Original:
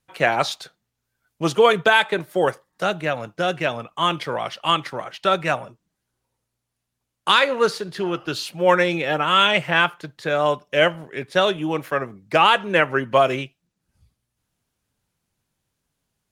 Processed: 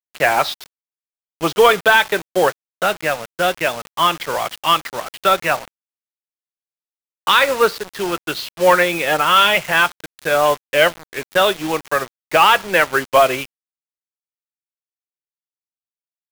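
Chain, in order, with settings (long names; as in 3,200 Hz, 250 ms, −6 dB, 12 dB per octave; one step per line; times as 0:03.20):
in parallel at +1 dB: brickwall limiter −12 dBFS, peak gain reduction 9 dB
on the sum: mid-hump overdrive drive 10 dB, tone 3,900 Hz, clips at 0 dBFS
low-pass filter 5,700 Hz 24 dB per octave
bit reduction 4 bits
expander for the loud parts 1.5 to 1, over −23 dBFS
level −1 dB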